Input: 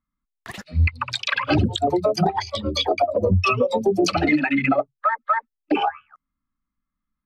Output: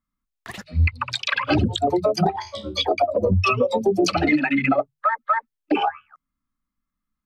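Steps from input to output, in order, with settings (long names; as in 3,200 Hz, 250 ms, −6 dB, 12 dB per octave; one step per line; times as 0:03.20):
mains-hum notches 50/100/150 Hz
0:02.36–0:02.78: tuned comb filter 62 Hz, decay 0.29 s, harmonics all, mix 80%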